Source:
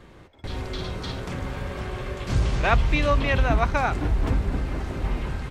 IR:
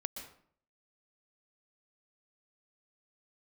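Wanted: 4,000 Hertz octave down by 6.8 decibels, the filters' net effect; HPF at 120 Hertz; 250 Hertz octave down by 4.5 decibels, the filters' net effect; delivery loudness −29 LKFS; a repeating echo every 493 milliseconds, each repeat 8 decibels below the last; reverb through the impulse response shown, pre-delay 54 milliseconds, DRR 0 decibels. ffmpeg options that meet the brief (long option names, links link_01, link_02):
-filter_complex "[0:a]highpass=120,equalizer=frequency=250:width_type=o:gain=-5.5,equalizer=frequency=4000:width_type=o:gain=-9,aecho=1:1:493|986|1479|1972|2465:0.398|0.159|0.0637|0.0255|0.0102,asplit=2[link_01][link_02];[1:a]atrim=start_sample=2205,adelay=54[link_03];[link_02][link_03]afir=irnorm=-1:irlink=0,volume=0.5dB[link_04];[link_01][link_04]amix=inputs=2:normalize=0,volume=-3.5dB"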